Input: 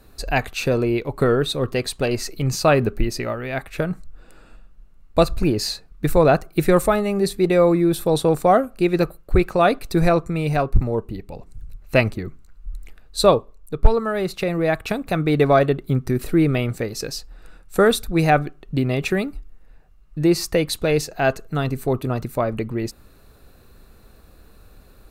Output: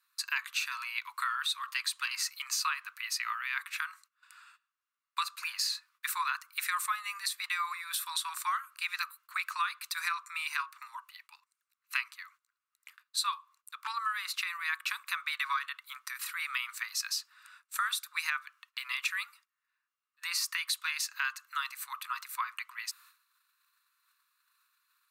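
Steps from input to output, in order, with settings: steep high-pass 1 kHz 96 dB/octave; gate -57 dBFS, range -16 dB; compression 6:1, threshold -29 dBFS, peak gain reduction 13.5 dB

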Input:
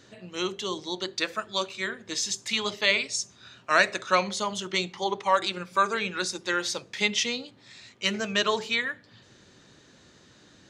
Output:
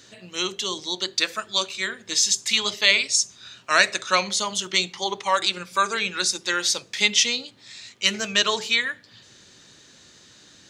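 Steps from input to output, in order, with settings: treble shelf 2.3 kHz +12 dB; trim -1 dB

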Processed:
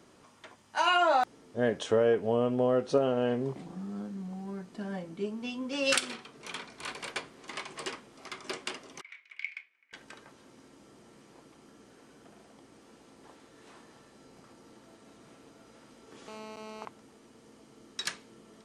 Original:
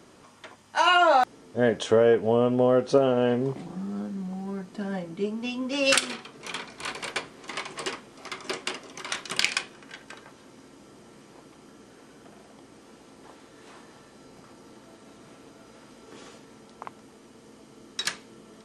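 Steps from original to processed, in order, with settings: 9.01–9.93 s: band-pass filter 2.2 kHz, Q 13; 16.28–16.85 s: mobile phone buzz -39 dBFS; trim -5.5 dB

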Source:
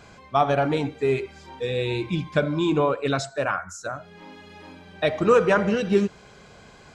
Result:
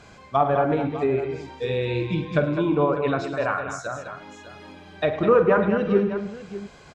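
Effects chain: low-pass that closes with the level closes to 1.6 kHz, closed at -18.5 dBFS; multi-tap echo 48/107/205/601 ms -12/-14.5/-8.5/-14.5 dB

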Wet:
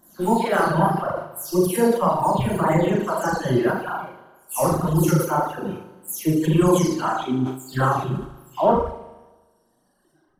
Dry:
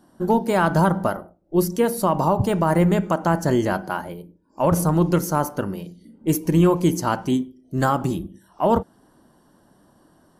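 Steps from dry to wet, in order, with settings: delay that grows with frequency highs early, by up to 251 ms; flutter echo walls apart 6.6 m, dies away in 1.4 s; in parallel at -8.5 dB: crossover distortion -34 dBFS; on the sum: flange 1.8 Hz, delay 0.5 ms, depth 9.8 ms, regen +55%; reverb removal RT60 2 s; decay stretcher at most 110 dB/s

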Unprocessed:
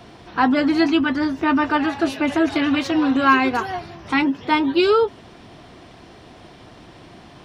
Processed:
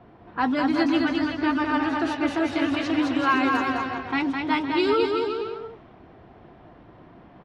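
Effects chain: vibrato 14 Hz 20 cents; bouncing-ball echo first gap 210 ms, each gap 0.8×, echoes 5; level-controlled noise filter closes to 1.4 kHz, open at -12 dBFS; trim -6.5 dB

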